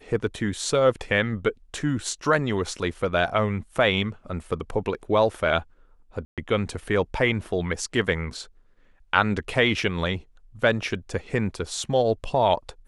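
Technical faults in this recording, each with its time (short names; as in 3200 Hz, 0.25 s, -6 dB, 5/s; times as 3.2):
6.25–6.38 gap 0.127 s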